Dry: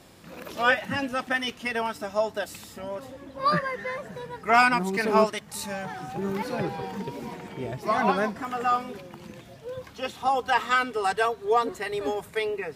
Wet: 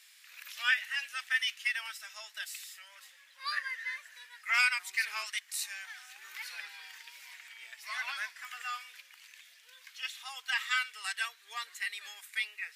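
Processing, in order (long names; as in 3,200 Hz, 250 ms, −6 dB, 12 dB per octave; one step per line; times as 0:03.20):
Chebyshev high-pass filter 1,900 Hz, order 3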